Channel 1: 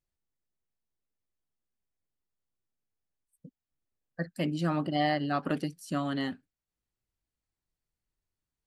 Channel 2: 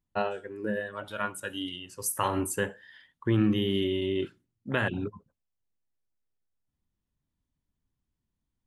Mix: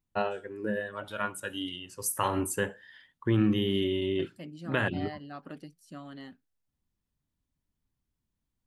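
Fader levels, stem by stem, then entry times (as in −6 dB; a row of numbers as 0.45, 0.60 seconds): −13.0, −0.5 decibels; 0.00, 0.00 seconds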